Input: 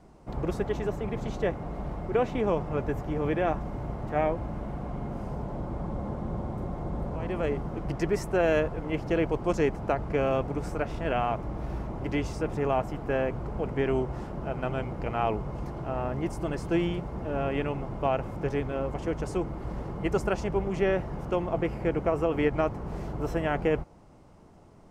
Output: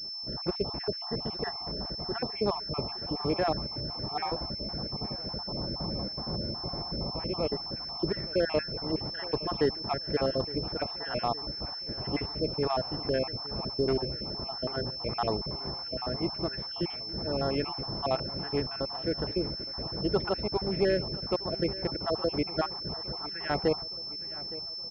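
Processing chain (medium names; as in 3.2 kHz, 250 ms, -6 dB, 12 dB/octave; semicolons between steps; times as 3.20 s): random holes in the spectrogram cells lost 47%; high-pass 81 Hz 6 dB/octave; on a send: feedback delay 865 ms, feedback 57%, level -17.5 dB; on the sum: class-D stage that switches slowly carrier 5.3 kHz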